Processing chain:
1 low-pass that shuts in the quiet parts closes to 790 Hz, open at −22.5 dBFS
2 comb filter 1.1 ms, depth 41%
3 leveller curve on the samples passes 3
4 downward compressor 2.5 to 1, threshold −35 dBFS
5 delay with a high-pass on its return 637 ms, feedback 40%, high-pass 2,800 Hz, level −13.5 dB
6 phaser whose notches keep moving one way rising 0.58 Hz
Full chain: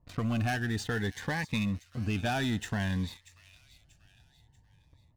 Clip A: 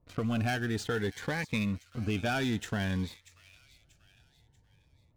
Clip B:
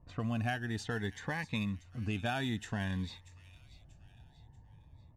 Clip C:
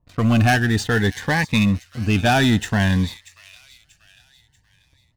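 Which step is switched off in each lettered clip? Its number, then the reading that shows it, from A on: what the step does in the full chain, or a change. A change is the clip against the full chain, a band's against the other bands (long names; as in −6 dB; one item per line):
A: 2, 500 Hz band +3.5 dB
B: 3, change in crest factor +4.0 dB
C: 4, average gain reduction 12.0 dB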